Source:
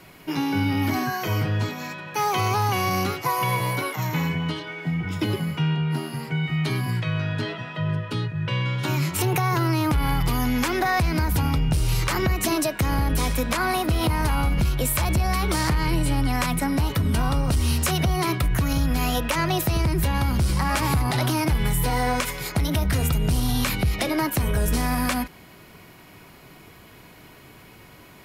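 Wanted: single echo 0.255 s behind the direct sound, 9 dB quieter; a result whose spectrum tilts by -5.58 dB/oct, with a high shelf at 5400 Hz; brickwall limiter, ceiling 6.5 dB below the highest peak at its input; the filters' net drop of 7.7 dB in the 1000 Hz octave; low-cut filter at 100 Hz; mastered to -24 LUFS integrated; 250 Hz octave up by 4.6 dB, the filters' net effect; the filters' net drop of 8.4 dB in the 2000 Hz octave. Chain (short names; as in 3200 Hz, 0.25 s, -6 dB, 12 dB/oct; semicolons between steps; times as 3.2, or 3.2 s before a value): HPF 100 Hz; bell 250 Hz +7 dB; bell 1000 Hz -9 dB; bell 2000 Hz -8.5 dB; high shelf 5400 Hz +3.5 dB; limiter -15.5 dBFS; echo 0.255 s -9 dB; gain +0.5 dB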